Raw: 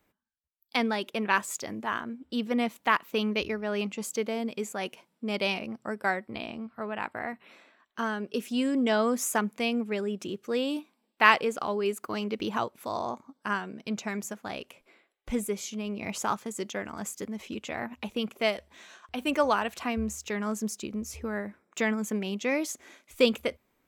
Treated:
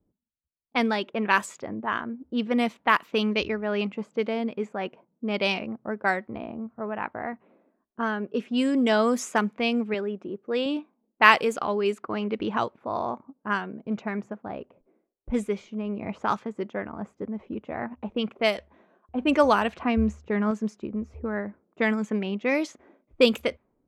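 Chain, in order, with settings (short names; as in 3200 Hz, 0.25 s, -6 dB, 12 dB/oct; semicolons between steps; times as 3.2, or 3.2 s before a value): 9.94–10.66 HPF 260 Hz 6 dB/oct; low-pass opened by the level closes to 340 Hz, open at -22 dBFS; 19.15–20.51 low shelf 410 Hz +5.5 dB; gain +3.5 dB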